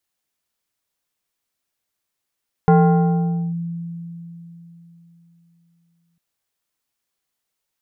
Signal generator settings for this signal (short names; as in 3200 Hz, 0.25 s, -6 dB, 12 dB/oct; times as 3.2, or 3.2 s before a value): FM tone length 3.50 s, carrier 169 Hz, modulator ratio 3.64, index 1, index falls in 0.86 s linear, decay 3.70 s, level -8 dB